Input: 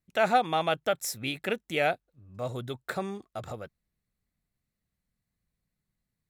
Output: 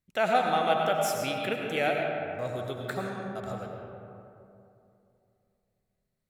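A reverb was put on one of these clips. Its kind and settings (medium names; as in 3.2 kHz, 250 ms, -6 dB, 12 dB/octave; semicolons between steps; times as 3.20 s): algorithmic reverb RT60 2.8 s, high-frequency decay 0.4×, pre-delay 55 ms, DRR 0.5 dB; trim -2 dB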